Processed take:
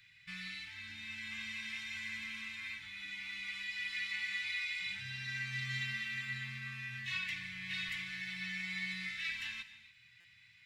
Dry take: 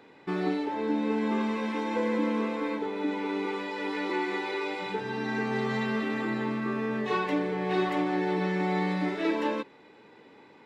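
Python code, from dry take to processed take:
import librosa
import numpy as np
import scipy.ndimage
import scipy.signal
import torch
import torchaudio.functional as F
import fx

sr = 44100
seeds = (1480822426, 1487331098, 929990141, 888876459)

y = scipy.signal.sosfilt(scipy.signal.ellip(3, 1.0, 70, [110.0, 2100.0], 'bandstop', fs=sr, output='sos'), x)
y = fx.rev_gated(y, sr, seeds[0], gate_ms=310, shape='flat', drr_db=12.0)
y = fx.buffer_glitch(y, sr, at_s=(10.2,), block=256, repeats=7)
y = F.gain(torch.from_numpy(y), 1.0).numpy()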